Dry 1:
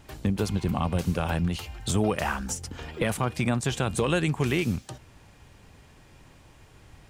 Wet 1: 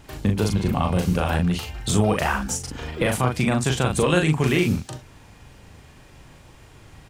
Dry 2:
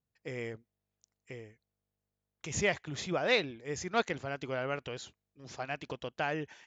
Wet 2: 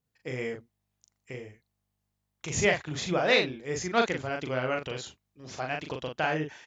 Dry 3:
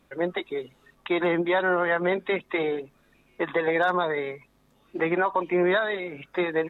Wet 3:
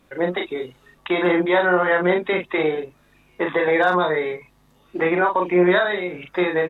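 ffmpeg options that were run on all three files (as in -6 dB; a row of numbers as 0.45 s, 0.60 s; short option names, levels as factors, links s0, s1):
-filter_complex "[0:a]asplit=2[s0][s1];[s1]adelay=39,volume=0.631[s2];[s0][s2]amix=inputs=2:normalize=0,volume=1.58"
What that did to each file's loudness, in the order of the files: +5.5 LU, +5.5 LU, +5.5 LU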